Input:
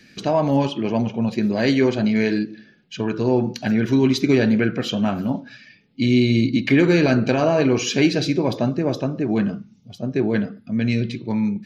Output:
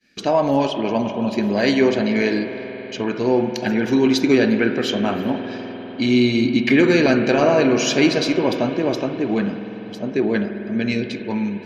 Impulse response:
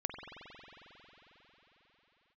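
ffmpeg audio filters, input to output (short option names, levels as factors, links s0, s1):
-filter_complex "[0:a]agate=range=0.0224:threshold=0.00891:ratio=3:detection=peak,equalizer=f=120:t=o:w=1.3:g=-10.5,asplit=2[s0][s1];[1:a]atrim=start_sample=2205,asetrate=40572,aresample=44100[s2];[s1][s2]afir=irnorm=-1:irlink=0,volume=0.668[s3];[s0][s3]amix=inputs=2:normalize=0,volume=0.841"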